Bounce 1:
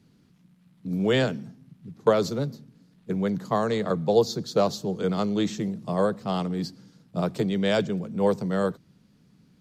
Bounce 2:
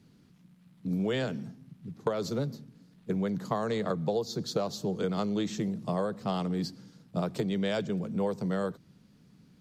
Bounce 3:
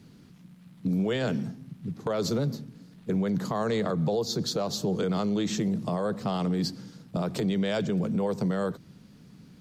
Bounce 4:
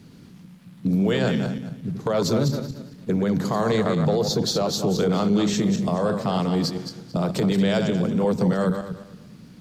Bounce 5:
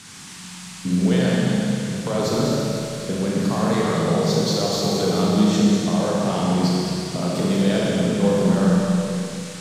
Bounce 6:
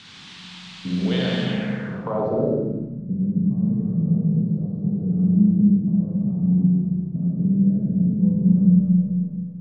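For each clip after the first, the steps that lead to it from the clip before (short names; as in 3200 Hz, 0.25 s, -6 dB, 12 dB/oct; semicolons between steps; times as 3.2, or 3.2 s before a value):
compressor 10:1, threshold -26 dBFS, peak gain reduction 13 dB
limiter -27 dBFS, peak gain reduction 11 dB; gain +7.5 dB
regenerating reverse delay 0.113 s, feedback 47%, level -6 dB; gain +5 dB
band noise 850–9000 Hz -41 dBFS; Schroeder reverb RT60 2.9 s, combs from 30 ms, DRR -4 dB; gain -3.5 dB
low-pass sweep 3600 Hz -> 180 Hz, 1.42–3.08; gain -4 dB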